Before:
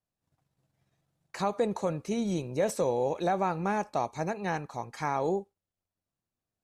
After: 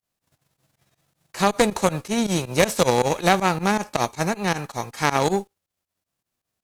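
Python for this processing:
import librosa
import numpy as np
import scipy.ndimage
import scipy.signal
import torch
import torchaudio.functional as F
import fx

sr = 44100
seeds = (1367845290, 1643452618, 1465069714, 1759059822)

y = fx.envelope_flatten(x, sr, power=0.6)
y = fx.volume_shaper(y, sr, bpm=159, per_beat=2, depth_db=-18, release_ms=82.0, shape='fast start')
y = fx.cheby_harmonics(y, sr, harmonics=(4, 6), levels_db=(-7, -11), full_scale_db=-14.0)
y = y * librosa.db_to_amplitude(8.5)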